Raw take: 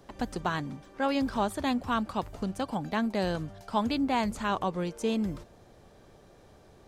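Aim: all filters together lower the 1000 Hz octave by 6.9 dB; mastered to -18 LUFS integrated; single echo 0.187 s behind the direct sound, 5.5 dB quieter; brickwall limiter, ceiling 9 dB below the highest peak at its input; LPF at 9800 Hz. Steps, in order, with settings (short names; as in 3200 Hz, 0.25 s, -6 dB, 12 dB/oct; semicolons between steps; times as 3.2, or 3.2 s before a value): LPF 9800 Hz; bell 1000 Hz -9 dB; limiter -26.5 dBFS; echo 0.187 s -5.5 dB; gain +18 dB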